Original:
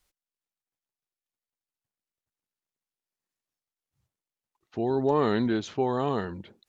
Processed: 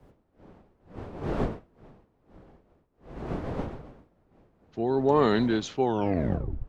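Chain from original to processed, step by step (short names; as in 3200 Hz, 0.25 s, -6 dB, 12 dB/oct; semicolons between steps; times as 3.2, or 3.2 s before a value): tape stop at the end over 0.84 s; wind noise 460 Hz -38 dBFS; three-band expander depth 40%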